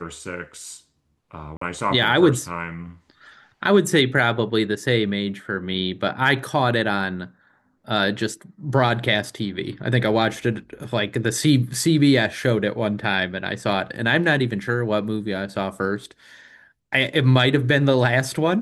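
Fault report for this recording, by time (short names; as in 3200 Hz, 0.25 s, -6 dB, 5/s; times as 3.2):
1.57–1.61 gap 44 ms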